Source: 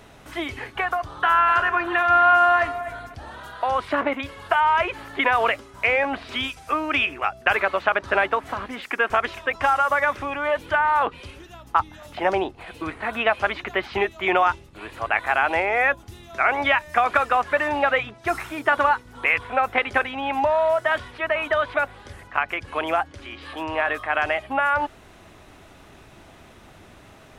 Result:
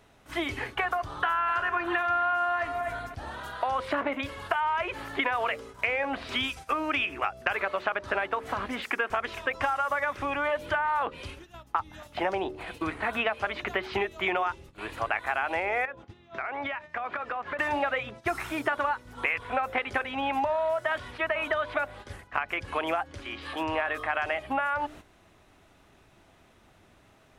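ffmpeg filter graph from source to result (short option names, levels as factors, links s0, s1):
-filter_complex "[0:a]asettb=1/sr,asplit=3[s0][s1][s2];[s0]atrim=end=15.854[s3];[s1]atrim=start=15.85:end=17.59,asetpts=PTS-STARTPTS,afade=t=in:d=0.004:c=qsin,afade=t=out:st=1.736:d=0.004:c=qsin,highpass=100,lowpass=3000,acompressor=threshold=0.0355:ratio=10:attack=3.2:release=140:knee=1:detection=peak[s4];[s2]atrim=start=17.586[s5];[s3][s4]acrossfade=d=0.004:c1=hsin:c2=qsin[s6];[s6][s5]acrossfade=d=0.004:c1=qsin:c2=hsin,bandreject=f=75.23:t=h:w=4,bandreject=f=150.46:t=h:w=4,bandreject=f=225.69:t=h:w=4,bandreject=f=300.92:t=h:w=4,bandreject=f=376.15:t=h:w=4,bandreject=f=451.38:t=h:w=4,bandreject=f=526.61:t=h:w=4,bandreject=f=601.84:t=h:w=4,agate=range=0.282:threshold=0.00891:ratio=16:detection=peak,acompressor=threshold=0.0562:ratio=5"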